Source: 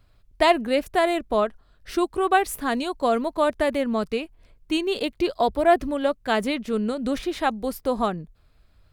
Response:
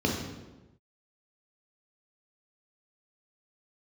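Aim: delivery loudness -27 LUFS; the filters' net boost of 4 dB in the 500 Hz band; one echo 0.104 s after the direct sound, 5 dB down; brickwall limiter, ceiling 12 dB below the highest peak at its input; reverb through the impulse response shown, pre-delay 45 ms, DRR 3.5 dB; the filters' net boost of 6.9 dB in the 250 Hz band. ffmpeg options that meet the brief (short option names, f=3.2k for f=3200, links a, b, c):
-filter_complex "[0:a]equalizer=f=250:t=o:g=7.5,equalizer=f=500:t=o:g=3.5,alimiter=limit=-14dB:level=0:latency=1,aecho=1:1:104:0.562,asplit=2[a][b];[1:a]atrim=start_sample=2205,adelay=45[c];[b][c]afir=irnorm=-1:irlink=0,volume=-15dB[d];[a][d]amix=inputs=2:normalize=0,volume=-11.5dB"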